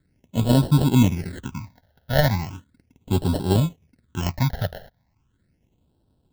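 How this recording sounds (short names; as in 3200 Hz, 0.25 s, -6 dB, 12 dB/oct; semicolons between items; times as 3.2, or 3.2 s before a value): aliases and images of a low sample rate 1200 Hz, jitter 0%; phasing stages 8, 0.37 Hz, lowest notch 310–2100 Hz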